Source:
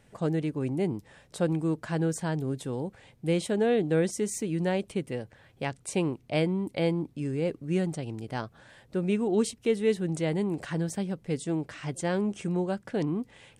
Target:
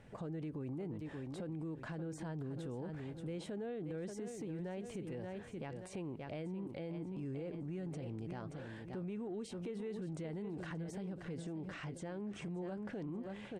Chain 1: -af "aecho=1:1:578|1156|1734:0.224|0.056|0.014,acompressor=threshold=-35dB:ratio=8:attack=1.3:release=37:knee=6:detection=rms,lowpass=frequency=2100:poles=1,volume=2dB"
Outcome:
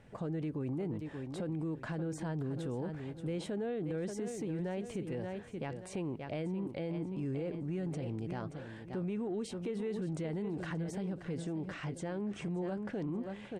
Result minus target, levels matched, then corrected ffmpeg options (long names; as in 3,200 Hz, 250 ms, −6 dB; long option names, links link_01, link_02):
downward compressor: peak gain reduction −5.5 dB
-af "aecho=1:1:578|1156|1734:0.224|0.056|0.014,acompressor=threshold=-41.5dB:ratio=8:attack=1.3:release=37:knee=6:detection=rms,lowpass=frequency=2100:poles=1,volume=2dB"